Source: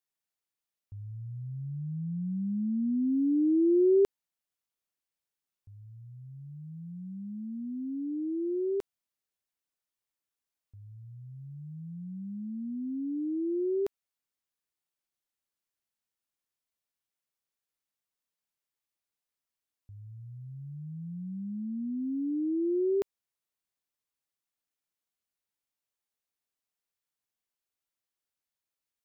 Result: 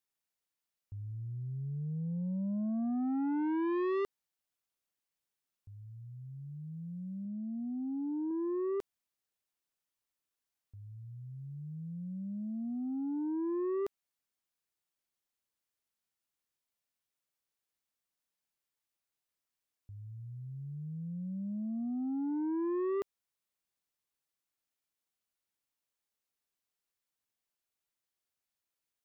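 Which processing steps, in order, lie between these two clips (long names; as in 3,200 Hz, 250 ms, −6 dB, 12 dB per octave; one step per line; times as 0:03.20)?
soft clipping −30.5 dBFS, distortion −8 dB
0:07.25–0:08.31: low-pass filter 1,200 Hz 12 dB per octave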